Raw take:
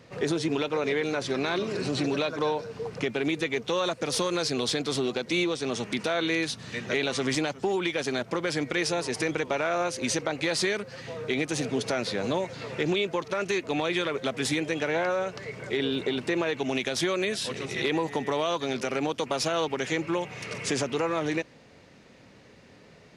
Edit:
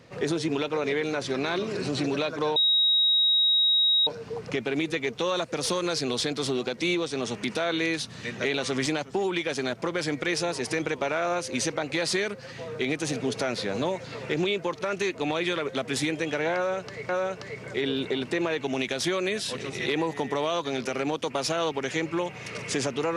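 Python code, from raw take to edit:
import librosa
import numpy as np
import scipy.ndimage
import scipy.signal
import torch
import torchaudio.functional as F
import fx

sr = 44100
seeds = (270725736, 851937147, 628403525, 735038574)

y = fx.edit(x, sr, fx.insert_tone(at_s=2.56, length_s=1.51, hz=3800.0, db=-18.5),
    fx.repeat(start_s=15.05, length_s=0.53, count=2), tone=tone)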